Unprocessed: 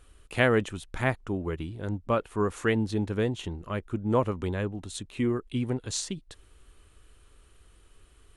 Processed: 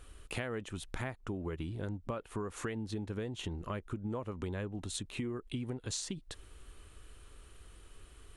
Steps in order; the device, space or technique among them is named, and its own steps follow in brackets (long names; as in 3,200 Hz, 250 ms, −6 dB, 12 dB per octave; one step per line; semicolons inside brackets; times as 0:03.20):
serial compression, peaks first (downward compressor 6 to 1, threshold −32 dBFS, peak gain reduction 14 dB; downward compressor 2 to 1, threshold −41 dBFS, peak gain reduction 7 dB)
level +2.5 dB